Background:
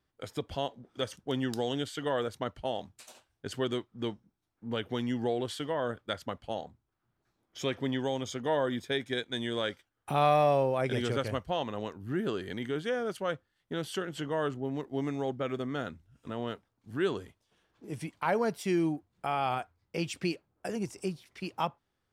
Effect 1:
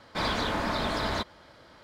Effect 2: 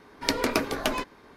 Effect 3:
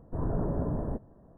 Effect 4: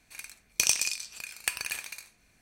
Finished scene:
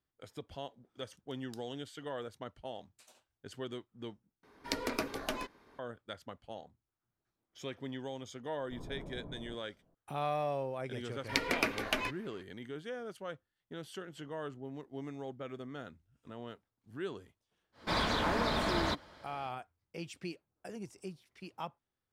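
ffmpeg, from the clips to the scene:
ffmpeg -i bed.wav -i cue0.wav -i cue1.wav -i cue2.wav -filter_complex "[2:a]asplit=2[link_01][link_02];[0:a]volume=-10dB[link_03];[3:a]equalizer=frequency=71:width=1.5:gain=-5[link_04];[link_02]equalizer=frequency=2300:width_type=o:width=1.1:gain=9.5[link_05];[link_03]asplit=2[link_06][link_07];[link_06]atrim=end=4.434[link_08];[link_01]atrim=end=1.36,asetpts=PTS-STARTPTS,volume=-10dB[link_09];[link_07]atrim=start=5.786[link_10];[link_04]atrim=end=1.37,asetpts=PTS-STARTPTS,volume=-15.5dB,afade=type=in:duration=0.004:curve=hsin,afade=type=out:start_time=1.366:duration=0.004:curve=hsin,adelay=378378S[link_11];[link_05]atrim=end=1.36,asetpts=PTS-STARTPTS,volume=-9.5dB,afade=type=in:duration=0.004:curve=hsin,afade=type=out:start_time=1.356:duration=0.004:curve=hsin,adelay=11070[link_12];[1:a]atrim=end=1.83,asetpts=PTS-STARTPTS,volume=-3dB,afade=type=in:duration=0.1,afade=type=out:start_time=1.73:duration=0.1,adelay=17720[link_13];[link_08][link_09]acrossfade=duration=0.004:curve1=hsin:curve2=hsin[link_14];[link_14][link_10]acrossfade=duration=0.004:curve1=hsin:curve2=hsin[link_15];[link_15][link_11][link_12][link_13]amix=inputs=4:normalize=0" out.wav

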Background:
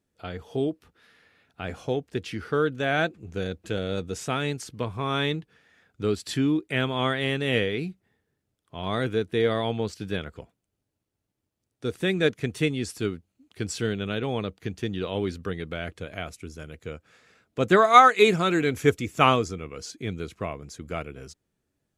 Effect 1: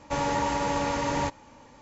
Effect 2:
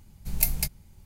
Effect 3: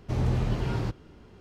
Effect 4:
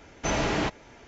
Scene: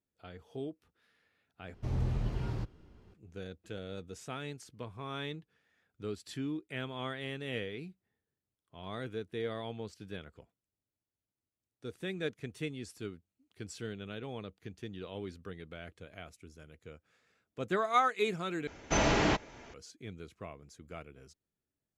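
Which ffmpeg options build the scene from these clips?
ffmpeg -i bed.wav -i cue0.wav -i cue1.wav -i cue2.wav -i cue3.wav -filter_complex "[0:a]volume=-13.5dB[link_01];[3:a]lowshelf=frequency=110:gain=7[link_02];[link_01]asplit=3[link_03][link_04][link_05];[link_03]atrim=end=1.744[link_06];[link_02]atrim=end=1.4,asetpts=PTS-STARTPTS,volume=-10dB[link_07];[link_04]atrim=start=3.136:end=18.674[link_08];[4:a]atrim=end=1.07,asetpts=PTS-STARTPTS,volume=-1dB[link_09];[link_05]atrim=start=19.736[link_10];[link_06][link_07]acrossfade=duration=0.004:curve1=hsin:curve2=hsin[link_11];[link_11][link_08]acrossfade=duration=0.004:curve1=hsin:curve2=hsin[link_12];[link_12][link_09]acrossfade=duration=0.004:curve1=hsin:curve2=hsin[link_13];[link_13][link_10]acrossfade=duration=0.004:curve1=hsin:curve2=hsin" out.wav

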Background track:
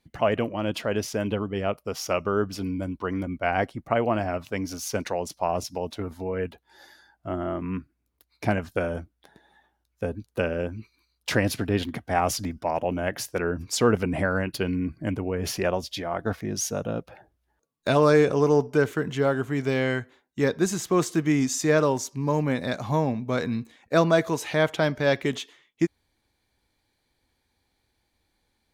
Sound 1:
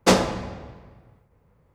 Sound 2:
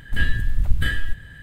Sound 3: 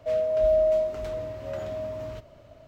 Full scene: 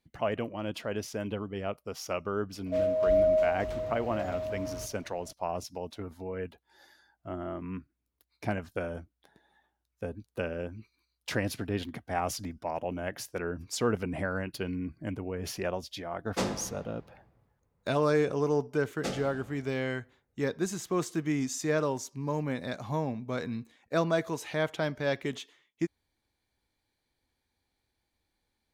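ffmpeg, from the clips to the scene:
ffmpeg -i bed.wav -i cue0.wav -i cue1.wav -i cue2.wav -filter_complex "[1:a]asplit=2[link_01][link_02];[0:a]volume=-7.5dB[link_03];[link_02]asuperstop=centerf=1000:order=4:qfactor=3.3[link_04];[3:a]atrim=end=2.67,asetpts=PTS-STARTPTS,volume=-2.5dB,afade=type=in:duration=0.004:curve=hsin,afade=type=out:start_time=2.666:duration=0.004:curve=hsin,adelay=2660[link_05];[link_01]atrim=end=1.74,asetpts=PTS-STARTPTS,volume=-13.5dB,afade=type=in:duration=0.1,afade=type=out:start_time=1.64:duration=0.1,adelay=16300[link_06];[link_04]atrim=end=1.74,asetpts=PTS-STARTPTS,volume=-17.5dB,afade=type=in:duration=0.004:curve=hsin,afade=type=out:start_time=1.736:duration=0.004:curve=hsin,adelay=18970[link_07];[link_03][link_05][link_06][link_07]amix=inputs=4:normalize=0" out.wav

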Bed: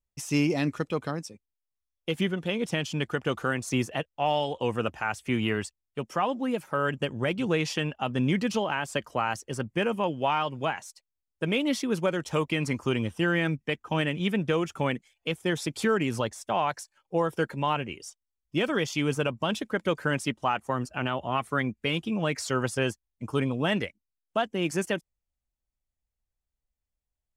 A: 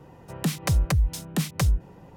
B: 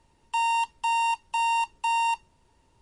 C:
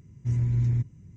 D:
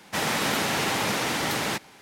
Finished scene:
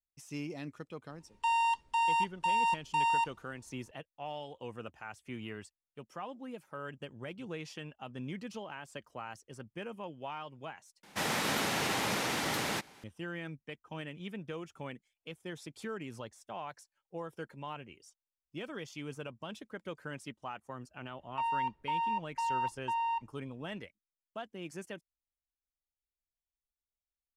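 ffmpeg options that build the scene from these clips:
ffmpeg -i bed.wav -i cue0.wav -i cue1.wav -i cue2.wav -i cue3.wav -filter_complex "[2:a]asplit=2[link_01][link_02];[0:a]volume=-15.5dB[link_03];[link_01]highshelf=frequency=6300:gain=-8.5[link_04];[4:a]aresample=32000,aresample=44100[link_05];[link_02]lowpass=1900[link_06];[link_03]asplit=2[link_07][link_08];[link_07]atrim=end=11.034[link_09];[link_05]atrim=end=2.01,asetpts=PTS-STARTPTS,volume=-6.5dB[link_10];[link_08]atrim=start=13.036[link_11];[link_04]atrim=end=2.81,asetpts=PTS-STARTPTS,volume=-4dB,afade=type=in:duration=0.004:curve=hsin,afade=type=out:start_time=2.806:duration=0.004:curve=hsin,adelay=1100[link_12];[link_06]atrim=end=2.81,asetpts=PTS-STARTPTS,volume=-7.5dB,afade=type=in:duration=0.004:curve=hsin,afade=type=out:start_time=2.806:duration=0.004:curve=hsin,adelay=21040[link_13];[link_09][link_10]acrossfade=duration=0.004:curve1=hsin:curve2=hsin[link_14];[link_14][link_11]acrossfade=duration=0.004:curve1=hsin:curve2=hsin[link_15];[link_15][link_12][link_13]amix=inputs=3:normalize=0" out.wav

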